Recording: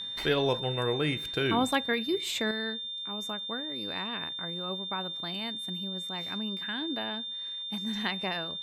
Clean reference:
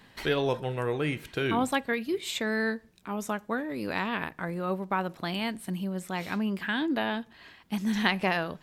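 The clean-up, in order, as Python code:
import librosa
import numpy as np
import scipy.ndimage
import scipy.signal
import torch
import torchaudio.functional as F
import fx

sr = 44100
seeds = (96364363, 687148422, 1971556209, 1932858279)

y = fx.fix_declick_ar(x, sr, threshold=6.5)
y = fx.notch(y, sr, hz=3600.0, q=30.0)
y = fx.fix_level(y, sr, at_s=2.51, step_db=7.0)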